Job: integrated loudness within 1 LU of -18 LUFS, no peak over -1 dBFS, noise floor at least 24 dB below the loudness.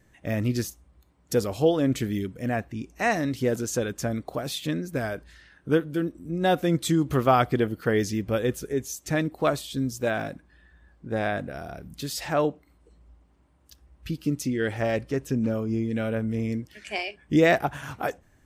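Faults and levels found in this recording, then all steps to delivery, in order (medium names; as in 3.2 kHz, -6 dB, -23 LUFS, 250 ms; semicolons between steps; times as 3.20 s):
loudness -27.0 LUFS; peak level -8.0 dBFS; loudness target -18.0 LUFS
-> trim +9 dB; peak limiter -1 dBFS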